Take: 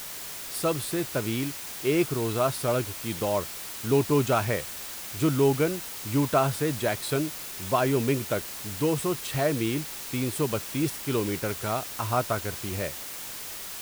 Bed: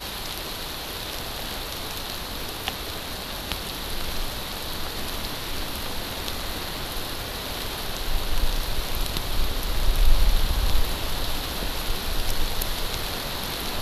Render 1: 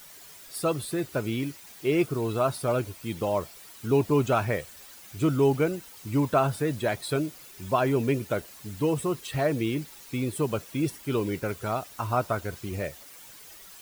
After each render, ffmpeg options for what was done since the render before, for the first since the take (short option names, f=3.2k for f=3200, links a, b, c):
-af "afftdn=nr=12:nf=-38"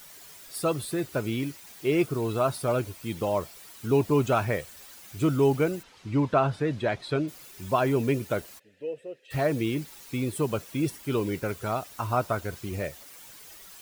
-filter_complex "[0:a]asplit=3[a][b][c];[a]afade=t=out:st=5.82:d=0.02[d];[b]lowpass=4.2k,afade=t=in:st=5.82:d=0.02,afade=t=out:st=7.27:d=0.02[e];[c]afade=t=in:st=7.27:d=0.02[f];[d][e][f]amix=inputs=3:normalize=0,asplit=3[g][h][i];[g]afade=t=out:st=8.58:d=0.02[j];[h]asplit=3[k][l][m];[k]bandpass=f=530:t=q:w=8,volume=0dB[n];[l]bandpass=f=1.84k:t=q:w=8,volume=-6dB[o];[m]bandpass=f=2.48k:t=q:w=8,volume=-9dB[p];[n][o][p]amix=inputs=3:normalize=0,afade=t=in:st=8.58:d=0.02,afade=t=out:st=9.3:d=0.02[q];[i]afade=t=in:st=9.3:d=0.02[r];[j][q][r]amix=inputs=3:normalize=0"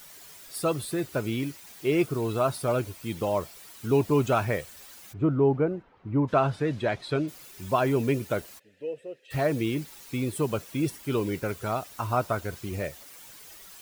-filter_complex "[0:a]asplit=3[a][b][c];[a]afade=t=out:st=5.12:d=0.02[d];[b]lowpass=1.2k,afade=t=in:st=5.12:d=0.02,afade=t=out:st=6.27:d=0.02[e];[c]afade=t=in:st=6.27:d=0.02[f];[d][e][f]amix=inputs=3:normalize=0"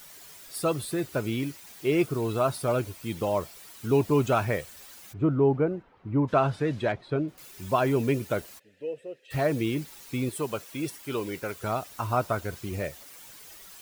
-filter_complex "[0:a]asettb=1/sr,asplit=3[a][b][c];[a]atrim=end=6.924[d];[b]atrim=start=6.92:end=7.38,asetpts=PTS-STARTPTS,afade=t=in:d=0.004:c=qsin,afade=t=out:st=0.456:d=0.004:c=qsin,lowpass=f=1.1k:p=1[e];[c]atrim=start=7.376[f];[d][e]acrossfade=d=0.004:c1=hsin:c2=qsin[g];[g][f]acrossfade=d=0.004:c1=qsin:c2=hsin,asettb=1/sr,asplit=3[h][i][j];[h]atrim=end=10.294[k];[i]atrim=start=10.29:end=11.64,asetpts=PTS-STARTPTS,afade=t=in:d=0.004:c=qsin,afade=t=out:st=1.346:d=0.004:c=qsin,lowshelf=f=300:g=-9.5[l];[j]atrim=start=11.636[m];[k][l]acrossfade=d=0.004:c1=hsin:c2=qsin[n];[n][m]acrossfade=d=0.004:c1=qsin:c2=hsin"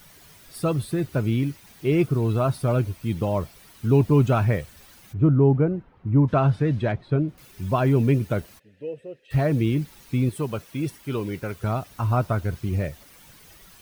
-af "bass=f=250:g=11,treble=f=4k:g=-4,bandreject=f=7.3k:w=15"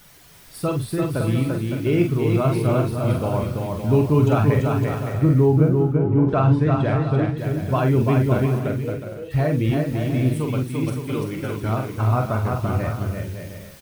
-filter_complex "[0:a]asplit=2[a][b];[b]adelay=46,volume=-5.5dB[c];[a][c]amix=inputs=2:normalize=0,aecho=1:1:340|561|704.6|798|858.7:0.631|0.398|0.251|0.158|0.1"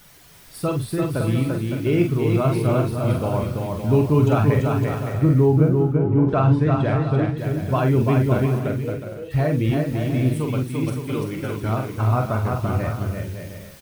-af anull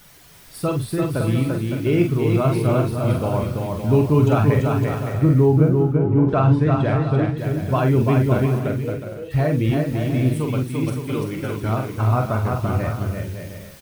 -af "volume=1dB"